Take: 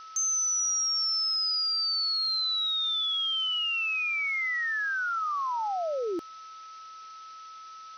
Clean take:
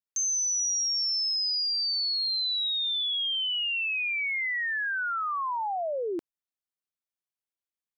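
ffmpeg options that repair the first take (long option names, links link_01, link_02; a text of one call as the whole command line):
ffmpeg -i in.wav -af "bandreject=frequency=1300:width=30,afftdn=noise_reduction=30:noise_floor=-46" out.wav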